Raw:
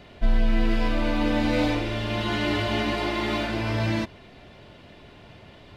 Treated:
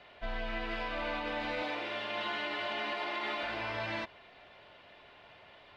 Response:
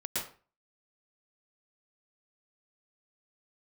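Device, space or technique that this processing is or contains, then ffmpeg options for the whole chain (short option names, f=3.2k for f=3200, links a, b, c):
DJ mixer with the lows and highs turned down: -filter_complex "[0:a]asettb=1/sr,asplit=3[a][b][c];[a]atrim=end=1.624[d];[b]atrim=start=1.62:end=3.43,asetpts=PTS-STARTPTS,afade=t=in:d=0.004:c=qsin,afade=t=out:st=1.806:d=0.004:c=qsin,highpass=f=140:w=0.5412,highpass=f=140:w=1.3066[e];[c]atrim=start=3.426[f];[d][e]acrossfade=d=0.004:c1=hsin:c2=qsin[g];[g][f]acrossfade=d=0.004:c1=qsin:c2=hsin,acrossover=split=530 4200:gain=0.141 1 0.141[h][i][j];[h][i][j]amix=inputs=3:normalize=0,alimiter=limit=-23.5dB:level=0:latency=1:release=100,volume=-3dB"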